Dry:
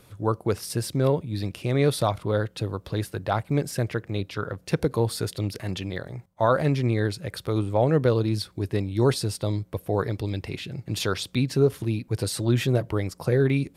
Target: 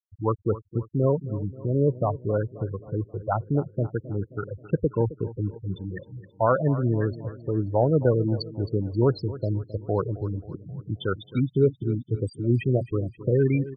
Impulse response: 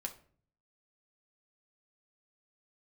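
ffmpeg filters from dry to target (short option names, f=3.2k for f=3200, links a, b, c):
-filter_complex "[0:a]asettb=1/sr,asplit=3[a][b][c];[a]atrim=end=1.134[d];[b]atrim=start=1.13:end=2.2,asetpts=PTS-STARTPTS,afade=t=in:d=0.004:c=qsin,afade=t=out:st=1.066:d=0.004:c=qsin,equalizer=f=2.5k:w=0.4:g=-3.5[e];[c]atrim=start=2.196[f];[d][e]acrossfade=d=0.004:c1=hsin:c2=qsin[g];[g][f]acrossfade=d=0.004:c1=qsin:c2=hsin,afftfilt=real='re*gte(hypot(re,im),0.126)':imag='im*gte(hypot(re,im),0.126)':win_size=1024:overlap=0.75,aecho=1:1:266|532|798|1064|1330:0.158|0.0808|0.0412|0.021|0.0107"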